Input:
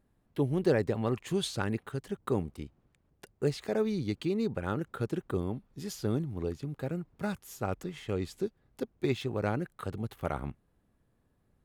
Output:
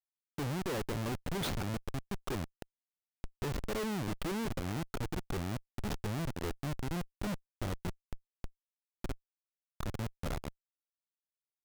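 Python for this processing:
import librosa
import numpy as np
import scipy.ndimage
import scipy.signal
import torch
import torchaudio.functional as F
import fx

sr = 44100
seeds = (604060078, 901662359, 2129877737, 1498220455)

y = fx.pre_emphasis(x, sr, coefficient=0.8, at=(8.06, 9.7))
y = fx.schmitt(y, sr, flips_db=-34.5)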